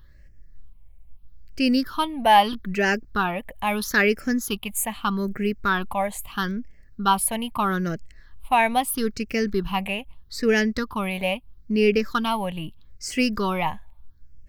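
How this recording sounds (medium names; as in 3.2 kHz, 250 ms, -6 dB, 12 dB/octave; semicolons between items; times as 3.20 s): phasing stages 6, 0.78 Hz, lowest notch 360–1000 Hz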